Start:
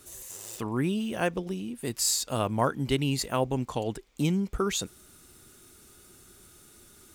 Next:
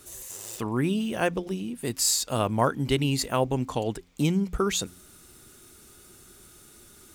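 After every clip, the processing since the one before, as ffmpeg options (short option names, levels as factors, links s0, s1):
-af "bandreject=f=88.37:t=h:w=4,bandreject=f=176.74:t=h:w=4,bandreject=f=265.11:t=h:w=4,volume=1.33"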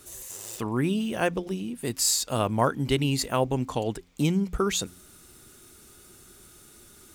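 -af anull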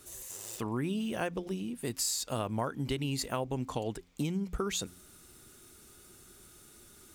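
-af "acompressor=threshold=0.0562:ratio=6,volume=0.631"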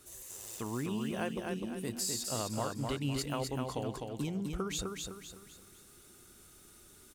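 -af "aecho=1:1:254|508|762|1016|1270:0.631|0.246|0.096|0.0374|0.0146,volume=0.668"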